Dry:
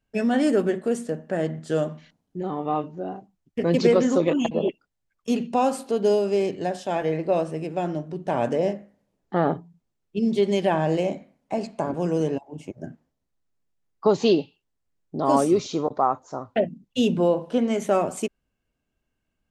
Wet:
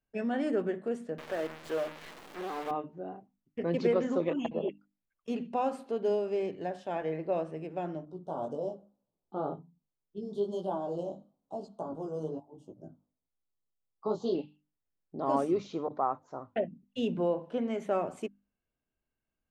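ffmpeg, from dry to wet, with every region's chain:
-filter_complex "[0:a]asettb=1/sr,asplit=3[a][b][c];[a]atrim=end=1.184[d];[b]atrim=start=1.18:end=2.71,asetpts=PTS-STARTPTS,afade=t=in:d=0.004:c=qsin,afade=t=out:st=1.526:d=0.004:c=qsin,aeval=exprs='val(0)+0.5*0.0376*sgn(val(0))':c=same,highpass=350,acrusher=bits=6:dc=4:mix=0:aa=0.000001[e];[c]atrim=start=2.706[f];[d][e]acrossfade=d=0.004:c1=hsin:c2=qsin[g];[g][f]acrossfade=d=0.004:c1=qsin:c2=hsin,asettb=1/sr,asplit=3[h][i][j];[h]atrim=end=8.054[k];[i]atrim=start=8.05:end=14.35,asetpts=PTS-STARTPTS,afade=t=in:d=0.004:c=qsin,afade=t=out:st=6.296:d=0.004:c=qsin,highshelf=f=8.3k:g=9.5,flanger=delay=15.5:depth=4.7:speed=1.1,asuperstop=centerf=2100:order=8:qfactor=1.1[l];[j]atrim=start=14.346[m];[k][l]acrossfade=d=0.004:c1=hsin:c2=qsin[n];[n][m]acrossfade=d=0.004:c1=qsin:c2=hsin,bass=f=250:g=-2,treble=f=4k:g=-13,bandreject=f=50:t=h:w=6,bandreject=f=100:t=h:w=6,bandreject=f=150:t=h:w=6,bandreject=f=200:t=h:w=6,bandreject=f=250:t=h:w=6,bandreject=f=300:t=h:w=6,volume=-8.5dB"

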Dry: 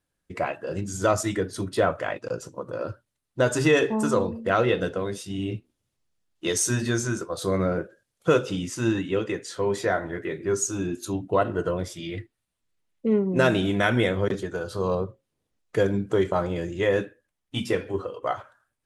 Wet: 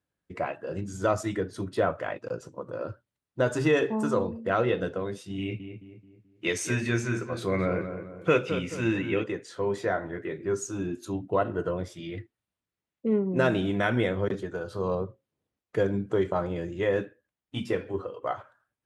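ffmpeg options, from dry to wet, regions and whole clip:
-filter_complex "[0:a]asettb=1/sr,asplit=3[a][b][c];[a]atrim=end=5.384[d];[b]atrim=start=5.38:end=9.24,asetpts=PTS-STARTPTS,afade=t=in:d=0.004:c=qsin,afade=t=out:st=3.856:d=0.004:c=qsin,equalizer=f=2.3k:w=2.7:g=14.5,asplit=2[e][f];[f]adelay=216,lowpass=f=1.9k:p=1,volume=-8.5dB,asplit=2[g][h];[h]adelay=216,lowpass=f=1.9k:p=1,volume=0.44,asplit=2[i][j];[j]adelay=216,lowpass=f=1.9k:p=1,volume=0.44,asplit=2[k][l];[l]adelay=216,lowpass=f=1.9k:p=1,volume=0.44,asplit=2[m][n];[n]adelay=216,lowpass=f=1.9k:p=1,volume=0.44[o];[e][g][i][k][m][o]amix=inputs=6:normalize=0,atrim=end_sample=170226[p];[c]atrim=start=9.236[q];[d][p]acrossfade=d=0.004:c1=hsin:c2=qsin[r];[r][q]acrossfade=d=0.004:c1=qsin:c2=hsin,highpass=62,highshelf=f=4k:g=-9.5,volume=-3dB"

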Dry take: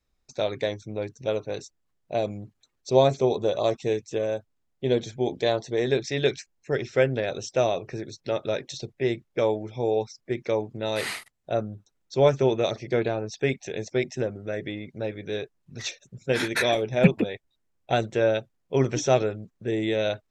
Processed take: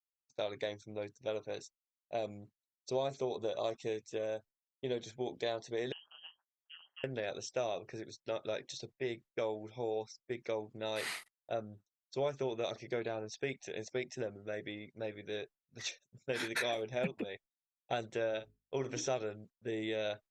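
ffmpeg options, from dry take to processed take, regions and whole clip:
-filter_complex "[0:a]asettb=1/sr,asplit=3[a][b][c];[a]atrim=end=5.924[d];[b]atrim=start=5.92:end=7.04,asetpts=PTS-STARTPTS,afade=t=in:d=0.004:c=qsin,afade=t=out:st=1.116:d=0.004:c=qsin,tremolo=f=170:d=0.889,acompressor=threshold=-41dB:ratio=4:attack=3.2:release=140:knee=1:detection=peak,lowpass=f=2.8k:t=q:w=0.5098,lowpass=f=2.8k:t=q:w=0.6013,lowpass=f=2.8k:t=q:w=0.9,lowpass=f=2.8k:t=q:w=2.563,afreqshift=-3300[e];[c]atrim=start=7.036[f];[d][e]acrossfade=d=0.004:c1=hsin:c2=qsin[g];[g][f]acrossfade=d=0.004:c1=qsin:c2=hsin,asettb=1/sr,asplit=3[h][i][j];[h]atrim=end=18.284[k];[i]atrim=start=18.28:end=19.08,asetpts=PTS-STARTPTS,afade=t=in:d=0.004:c=qsin,afade=t=out:st=0.796:d=0.004:c=qsin,asplit=2[l][m];[m]adelay=49,volume=-13dB[n];[l][n]amix=inputs=2:normalize=0,atrim=end_sample=35280,bandreject=f=52.92:t=h:w=4,bandreject=f=105.84:t=h:w=4,bandreject=f=158.76:t=h:w=4,bandreject=f=211.68:t=h:w=4,bandreject=f=264.6:t=h:w=4,bandreject=f=317.52:t=h:w=4,bandreject=f=370.44:t=h:w=4,bandreject=f=423.36:t=h:w=4,aeval=exprs='val(0)+0.00158*(sin(2*PI*50*n/s)+sin(2*PI*2*50*n/s)/2+sin(2*PI*3*50*n/s)/3+sin(2*PI*4*50*n/s)/4+sin(2*PI*5*50*n/s)/5)':c=same[o];[j]atrim=start=19.076[p];[k][o]acrossfade=d=0.004:c1=hsin:c2=qsin[q];[q][p]acrossfade=d=0.004:c1=qsin:c2=hsin,agate=range=-33dB:threshold=-38dB:ratio=3:detection=peak,acompressor=threshold=-23dB:ratio=3,lowshelf=f=270:g=-8,volume=-7.5dB"

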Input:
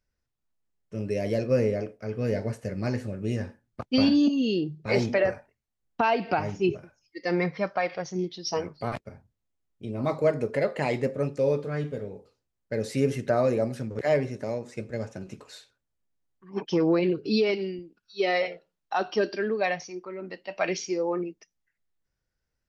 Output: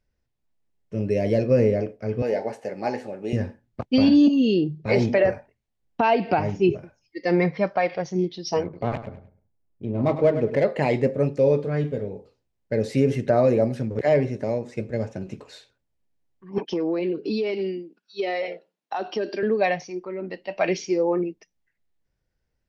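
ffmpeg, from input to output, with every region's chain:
-filter_complex "[0:a]asettb=1/sr,asplit=3[a][b][c];[a]atrim=end=2.224[d];[b]atrim=start=2.22:end=3.33,asetpts=PTS-STARTPTS,afade=t=in:d=0.004:c=qsin,afade=t=out:st=1.106:d=0.004:c=qsin,highpass=380,equalizer=f=810:w=5.9:g=14.5[e];[c]atrim=start=3.326[f];[d][e]acrossfade=d=0.004:c1=hsin:c2=qsin[g];[g][f]acrossfade=d=0.004:c1=qsin:c2=hsin,asettb=1/sr,asplit=3[h][i][j];[h]atrim=end=8.634[k];[i]atrim=start=8.63:end=10.64,asetpts=PTS-STARTPTS,afade=t=in:d=0.004:c=qsin,afade=t=out:st=2.006:d=0.004:c=qsin,adynamicsmooth=sensitivity=6:basefreq=1.6k,aecho=1:1:101|202|303:0.266|0.0718|0.0194,atrim=end_sample=88641[l];[j]atrim=start=10.636[m];[k][l]acrossfade=d=0.004:c1=hsin:c2=qsin[n];[n][m]acrossfade=d=0.004:c1=qsin:c2=hsin,asettb=1/sr,asplit=3[o][p][q];[o]atrim=end=16.584[r];[p]atrim=start=16.58:end=19.43,asetpts=PTS-STARTPTS,afade=t=in:d=0.004:c=qsin,afade=t=out:st=2.846:d=0.004:c=qsin,highpass=f=200:w=0.5412,highpass=f=200:w=1.3066,acompressor=threshold=-28dB:ratio=4:attack=3.2:release=140:knee=1:detection=peak[s];[q]atrim=start=19.426[t];[r][s]acrossfade=d=0.004:c1=hsin:c2=qsin[u];[u][t]acrossfade=d=0.004:c1=qsin:c2=hsin,lowpass=f=2.7k:p=1,equalizer=f=1.3k:t=o:w=0.69:g=-6,alimiter=level_in=14.5dB:limit=-1dB:release=50:level=0:latency=1,volume=-8.5dB"

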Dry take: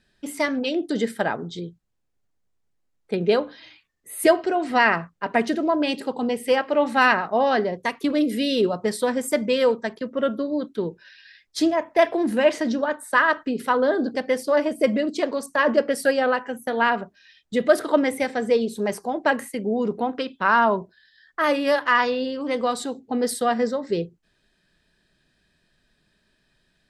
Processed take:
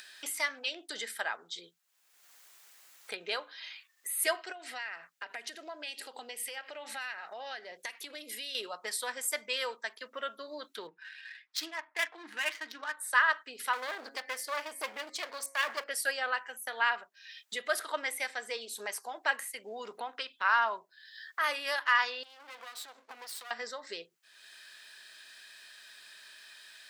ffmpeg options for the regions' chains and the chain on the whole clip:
-filter_complex "[0:a]asettb=1/sr,asplit=3[a][b][c];[a]atrim=end=4.524[d];[b]atrim=start=4.52:end=8.55,asetpts=PTS-STARTPTS,afade=t=in:d=0.004:c=qsin,afade=t=out:st=4.026:d=0.004:c=qsin,equalizer=f=1.1k:w=2.8:g=-10.5,acompressor=threshold=-31dB:ratio=4:attack=3.2:release=140:knee=1:detection=peak[e];[c]atrim=start=8.546[f];[d][e]acrossfade=d=0.004:c1=hsin:c2=qsin[g];[g][f]acrossfade=d=0.004:c1=qsin:c2=hsin,asettb=1/sr,asplit=3[h][i][j];[h]atrim=end=10.874[k];[i]atrim=start=10.87:end=12.97,asetpts=PTS-STARTPTS,afade=t=in:d=0.004:c=qsin,afade=t=out:st=2.096:d=0.004:c=qsin,equalizer=f=540:w=1.3:g=-13,aecho=1:1:6.5:0.51,atrim=end_sample=92610,adynamicsmooth=sensitivity=4:basefreq=1.7k[l];[j]atrim=start=12.966[m];[k][l]acrossfade=d=0.004:c1=hsin:c2=qsin[n];[n][m]acrossfade=d=0.004:c1=qsin:c2=hsin,asettb=1/sr,asplit=3[o][p][q];[o]atrim=end=13.734[r];[p]atrim=start=13.73:end=15.84,asetpts=PTS-STARTPTS,afade=t=in:d=0.004:c=qsin,afade=t=out:st=2.106:d=0.004:c=qsin,bandreject=f=137.1:t=h:w=4,bandreject=f=274.2:t=h:w=4,bandreject=f=411.3:t=h:w=4,bandreject=f=548.4:t=h:w=4,bandreject=f=685.5:t=h:w=4,bandreject=f=822.6:t=h:w=4,bandreject=f=959.7:t=h:w=4,bandreject=f=1.0968k:t=h:w=4,bandreject=f=1.2339k:t=h:w=4,bandreject=f=1.371k:t=h:w=4,bandreject=f=1.5081k:t=h:w=4,bandreject=f=1.6452k:t=h:w=4,bandreject=f=1.7823k:t=h:w=4,bandreject=f=1.9194k:t=h:w=4,bandreject=f=2.0565k:t=h:w=4,bandreject=f=2.1936k:t=h:w=4,bandreject=f=2.3307k:t=h:w=4,bandreject=f=2.4678k:t=h:w=4,aeval=exprs='clip(val(0),-1,0.0355)':c=same[s];[q]atrim=start=15.836[t];[r][s]acrossfade=d=0.004:c1=hsin:c2=qsin[u];[u][t]acrossfade=d=0.004:c1=qsin:c2=hsin,asettb=1/sr,asplit=3[v][w][x];[v]atrim=end=22.234[y];[w]atrim=start=22.23:end=23.51,asetpts=PTS-STARTPTS,afade=t=in:d=0.004:c=qsin,afade=t=out:st=1.276:d=0.004:c=qsin,lowpass=5.8k,acompressor=threshold=-37dB:ratio=6:attack=3.2:release=140:knee=1:detection=peak,aeval=exprs='max(val(0),0)':c=same[z];[x]atrim=start=23.506[aa];[y][z]acrossfade=d=0.004:c1=hsin:c2=qsin[ab];[ab][aa]acrossfade=d=0.004:c1=qsin:c2=hsin,highpass=1.3k,acompressor=mode=upward:threshold=-31dB:ratio=2.5,highshelf=f=11k:g=8,volume=-4dB"

